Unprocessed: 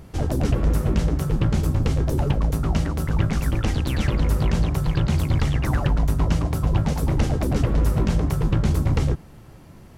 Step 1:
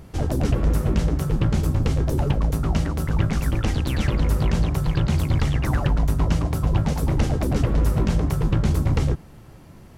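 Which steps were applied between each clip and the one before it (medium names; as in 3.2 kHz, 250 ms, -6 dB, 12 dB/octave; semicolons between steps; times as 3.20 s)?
no audible change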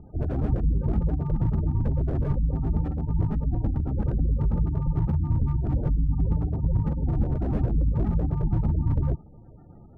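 sample-and-hold 42×; spectral gate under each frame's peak -20 dB strong; slew-rate limiter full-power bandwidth 26 Hz; trim -3 dB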